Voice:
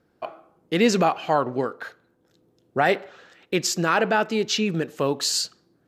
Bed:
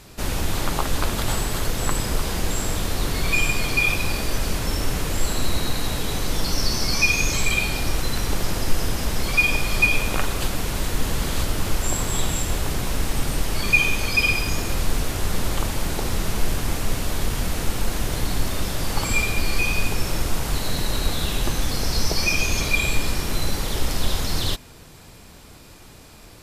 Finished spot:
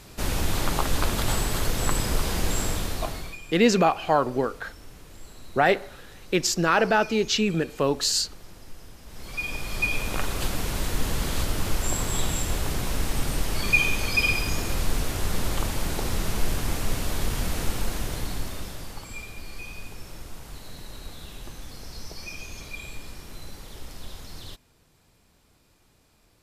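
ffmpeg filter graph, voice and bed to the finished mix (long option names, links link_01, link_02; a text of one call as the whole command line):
ffmpeg -i stem1.wav -i stem2.wav -filter_complex "[0:a]adelay=2800,volume=0dB[link_01];[1:a]volume=18dB,afade=type=out:start_time=2.61:duration=0.77:silence=0.0891251,afade=type=in:start_time=9.05:duration=1.45:silence=0.105925,afade=type=out:start_time=17.63:duration=1.42:silence=0.199526[link_02];[link_01][link_02]amix=inputs=2:normalize=0" out.wav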